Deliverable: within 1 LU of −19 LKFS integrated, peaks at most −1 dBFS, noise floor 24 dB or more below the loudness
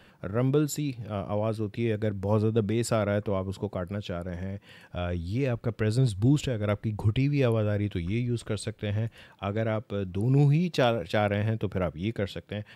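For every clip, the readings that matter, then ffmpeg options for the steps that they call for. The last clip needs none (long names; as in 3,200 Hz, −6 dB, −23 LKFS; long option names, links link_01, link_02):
integrated loudness −28.5 LKFS; sample peak −11.5 dBFS; target loudness −19.0 LKFS
→ -af "volume=9.5dB"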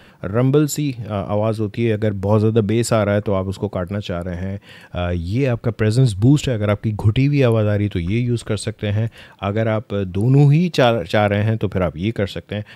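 integrated loudness −19.0 LKFS; sample peak −2.0 dBFS; background noise floor −47 dBFS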